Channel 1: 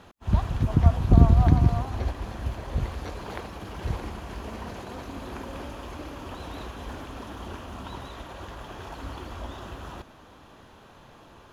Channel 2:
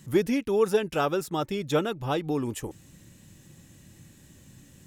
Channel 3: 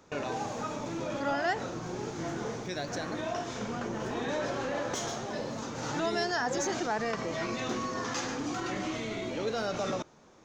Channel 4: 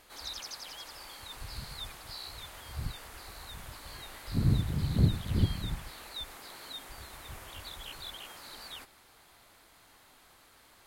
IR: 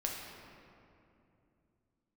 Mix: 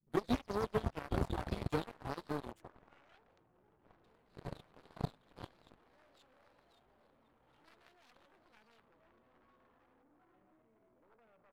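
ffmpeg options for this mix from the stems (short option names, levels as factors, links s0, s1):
-filter_complex "[0:a]volume=0.168[s0];[1:a]highshelf=f=2800:g=-12,acrossover=split=350[s1][s2];[s2]acompressor=threshold=0.0158:ratio=6[s3];[s1][s3]amix=inputs=2:normalize=0,asplit=2[s4][s5];[s5]adelay=11.2,afreqshift=1.3[s6];[s4][s6]amix=inputs=2:normalize=1,volume=0.944[s7];[2:a]lowpass=1200,adelay=1650,volume=0.282[s8];[3:a]equalizer=f=5600:t=o:w=0.37:g=-8,aecho=1:1:6.4:0.72,volume=0.282,asplit=3[s9][s10][s11];[s9]atrim=end=2.52,asetpts=PTS-STARTPTS,afade=t=out:st=2.516:d=0.004:c=hsin[s12];[s10]atrim=start=2.52:end=4.04,asetpts=PTS-STARTPTS,volume=0[s13];[s11]atrim=start=4.04,asetpts=PTS-STARTPTS,afade=t=in:d=0.004:c=hsin[s14];[s12][s13][s14]concat=n=3:v=0:a=1[s15];[s0][s7][s8][s15]amix=inputs=4:normalize=0,anlmdn=0.00398,aeval=exprs='0.141*(cos(1*acos(clip(val(0)/0.141,-1,1)))-cos(1*PI/2))+0.0178*(cos(6*acos(clip(val(0)/0.141,-1,1)))-cos(6*PI/2))+0.0224*(cos(7*acos(clip(val(0)/0.141,-1,1)))-cos(7*PI/2))+0.0126*(cos(8*acos(clip(val(0)/0.141,-1,1)))-cos(8*PI/2))':c=same,lowshelf=f=440:g=-6"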